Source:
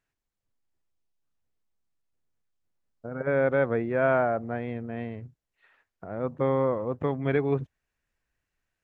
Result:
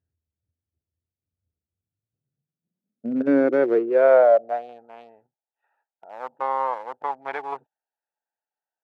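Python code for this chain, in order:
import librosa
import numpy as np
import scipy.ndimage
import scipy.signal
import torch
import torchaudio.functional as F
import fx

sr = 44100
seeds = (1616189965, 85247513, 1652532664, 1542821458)

y = fx.wiener(x, sr, points=41)
y = fx.filter_sweep_highpass(y, sr, from_hz=84.0, to_hz=870.0, start_s=1.67, end_s=4.89, q=7.7)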